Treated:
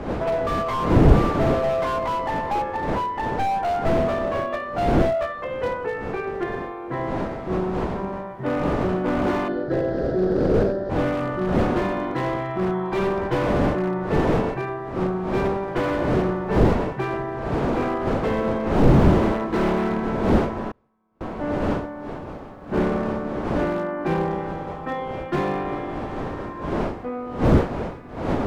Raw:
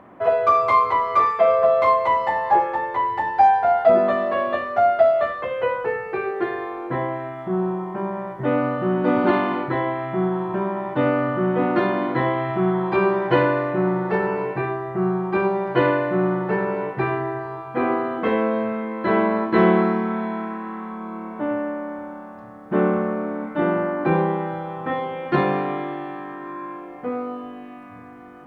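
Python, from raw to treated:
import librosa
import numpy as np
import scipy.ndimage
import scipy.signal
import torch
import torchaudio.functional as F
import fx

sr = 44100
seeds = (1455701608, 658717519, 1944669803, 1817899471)

y = np.minimum(x, 2.0 * 10.0 ** (-14.0 / 20.0) - x)
y = fx.dmg_wind(y, sr, seeds[0], corner_hz=540.0, level_db=-20.0)
y = fx.curve_eq(y, sr, hz=(220.0, 550.0, 1000.0, 1600.0, 2300.0, 4700.0, 7200.0), db=(0, 8, -17, 2, -19, 5, -10), at=(9.48, 10.9))
y = fx.gate_flip(y, sr, shuts_db=-25.0, range_db=-35, at=(20.71, 21.21))
y = fx.slew_limit(y, sr, full_power_hz=100.0)
y = y * librosa.db_to_amplitude(-3.0)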